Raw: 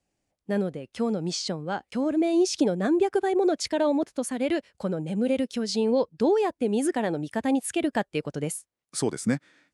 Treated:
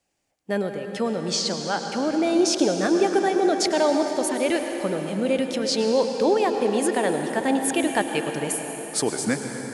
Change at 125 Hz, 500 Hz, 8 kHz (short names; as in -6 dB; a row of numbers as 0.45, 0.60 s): -1.0, +3.5, +7.0 dB